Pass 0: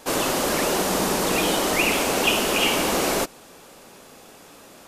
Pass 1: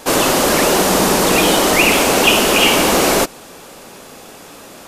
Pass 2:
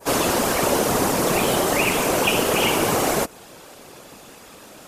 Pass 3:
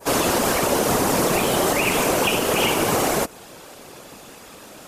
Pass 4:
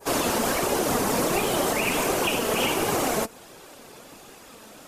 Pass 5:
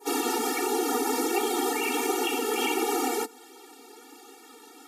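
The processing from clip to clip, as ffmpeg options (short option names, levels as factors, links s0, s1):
-af "acontrast=76,volume=1.33"
-af "adynamicequalizer=threshold=0.0447:dfrequency=3800:dqfactor=0.75:tfrequency=3800:tqfactor=0.75:attack=5:release=100:ratio=0.375:range=2.5:mode=cutabove:tftype=bell,afftfilt=real='hypot(re,im)*cos(2*PI*random(0))':imag='hypot(re,im)*sin(2*PI*random(1))':win_size=512:overlap=0.75"
-af "alimiter=limit=0.282:level=0:latency=1:release=101,volume=1.19"
-af "flanger=delay=2.4:depth=2.2:regen=66:speed=1.4:shape=sinusoidal"
-af "afftfilt=real='re*eq(mod(floor(b*sr/1024/240),2),1)':imag='im*eq(mod(floor(b*sr/1024/240),2),1)':win_size=1024:overlap=0.75"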